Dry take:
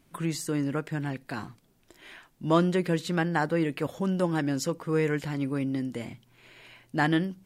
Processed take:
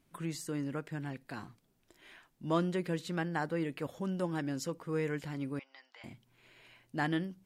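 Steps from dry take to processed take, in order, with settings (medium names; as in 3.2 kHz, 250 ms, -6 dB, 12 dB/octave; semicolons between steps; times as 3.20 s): 5.59–6.04 s: elliptic band-pass 800–5100 Hz, stop band 70 dB; trim -8 dB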